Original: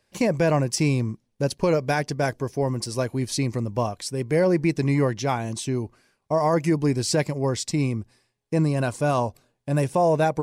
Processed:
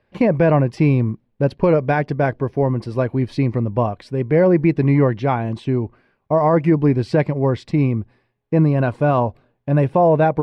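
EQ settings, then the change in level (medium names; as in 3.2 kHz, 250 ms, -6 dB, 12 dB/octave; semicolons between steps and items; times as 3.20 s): distance through air 450 m; +7.0 dB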